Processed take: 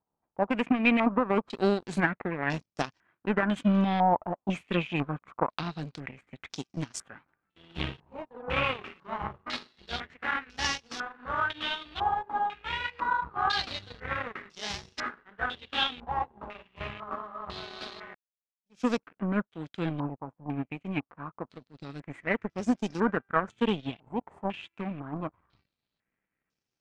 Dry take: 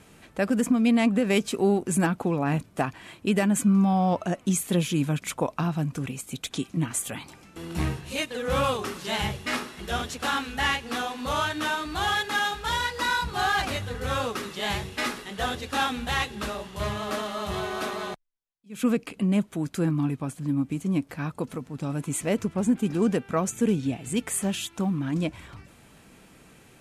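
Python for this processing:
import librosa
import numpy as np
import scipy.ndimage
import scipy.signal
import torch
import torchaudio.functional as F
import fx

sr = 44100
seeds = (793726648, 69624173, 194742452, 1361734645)

y = fx.transient(x, sr, attack_db=1, sustain_db=6, at=(5.93, 6.57))
y = fx.power_curve(y, sr, exponent=2.0)
y = fx.filter_held_lowpass(y, sr, hz=2.0, low_hz=900.0, high_hz=5500.0)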